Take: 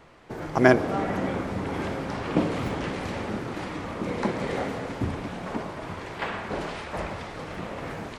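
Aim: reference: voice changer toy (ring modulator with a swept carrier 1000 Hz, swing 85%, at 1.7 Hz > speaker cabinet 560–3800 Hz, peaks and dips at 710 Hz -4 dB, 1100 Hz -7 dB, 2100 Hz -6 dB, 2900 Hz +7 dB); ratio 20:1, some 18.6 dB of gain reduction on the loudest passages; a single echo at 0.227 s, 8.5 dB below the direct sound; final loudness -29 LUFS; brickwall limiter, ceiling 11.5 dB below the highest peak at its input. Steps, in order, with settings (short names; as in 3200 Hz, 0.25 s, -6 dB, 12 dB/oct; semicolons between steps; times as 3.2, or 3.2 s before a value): compressor 20:1, threshold -29 dBFS; limiter -27.5 dBFS; echo 0.227 s -8.5 dB; ring modulator with a swept carrier 1000 Hz, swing 85%, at 1.7 Hz; speaker cabinet 560–3800 Hz, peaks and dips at 710 Hz -4 dB, 1100 Hz -7 dB, 2100 Hz -6 dB, 2900 Hz +7 dB; gain +12 dB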